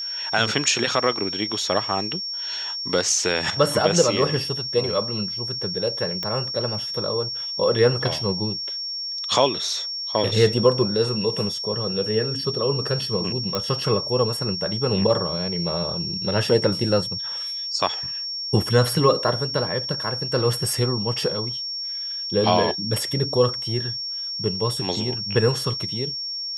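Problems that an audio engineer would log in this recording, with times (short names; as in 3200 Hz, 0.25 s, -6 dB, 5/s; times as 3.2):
tone 5500 Hz -27 dBFS
6.23 pop -13 dBFS
13.55 pop -10 dBFS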